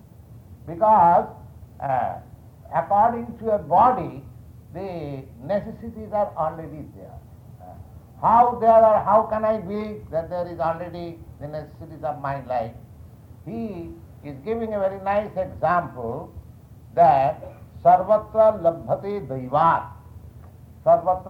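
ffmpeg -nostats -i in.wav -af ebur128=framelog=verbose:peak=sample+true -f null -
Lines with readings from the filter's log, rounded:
Integrated loudness:
  I:         -21.4 LUFS
  Threshold: -33.2 LUFS
Loudness range:
  LRA:        10.3 LU
  Threshold: -43.3 LUFS
  LRA low:   -30.5 LUFS
  LRA high:  -20.2 LUFS
Sample peak:
  Peak:       -5.1 dBFS
True peak:
  Peak:       -5.1 dBFS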